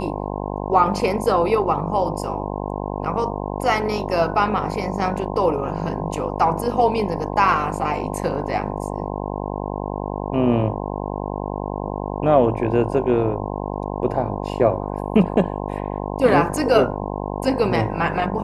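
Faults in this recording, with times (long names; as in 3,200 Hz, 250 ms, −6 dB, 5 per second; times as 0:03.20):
mains buzz 50 Hz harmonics 21 −27 dBFS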